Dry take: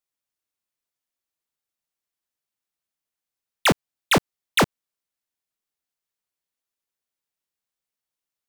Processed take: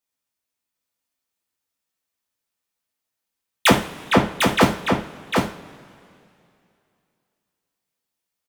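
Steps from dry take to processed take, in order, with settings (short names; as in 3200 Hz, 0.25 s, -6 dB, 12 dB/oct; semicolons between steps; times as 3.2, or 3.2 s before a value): 3.69–4.61 LPF 1600 Hz 6 dB/oct; echo 0.751 s -4.5 dB; reverb, pre-delay 3 ms, DRR -0.5 dB; gain +1 dB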